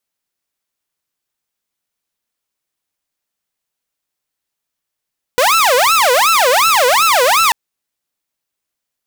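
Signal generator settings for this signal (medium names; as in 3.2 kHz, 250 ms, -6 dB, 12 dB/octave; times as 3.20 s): siren wail 486–1340 Hz 2.7 per s saw -6.5 dBFS 2.14 s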